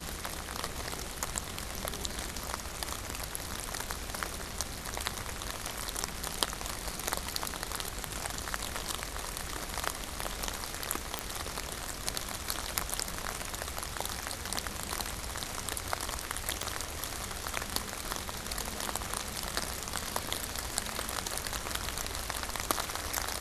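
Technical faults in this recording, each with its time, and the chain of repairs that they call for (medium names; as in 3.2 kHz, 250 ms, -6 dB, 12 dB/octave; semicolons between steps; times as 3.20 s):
11.19 s: pop -13 dBFS
16.63 s: pop -17 dBFS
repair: de-click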